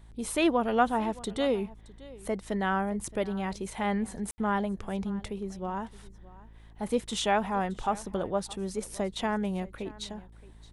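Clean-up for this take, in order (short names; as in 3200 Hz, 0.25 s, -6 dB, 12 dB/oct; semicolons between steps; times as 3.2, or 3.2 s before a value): de-hum 54.7 Hz, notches 8; room tone fill 4.31–4.38; inverse comb 0.62 s -20 dB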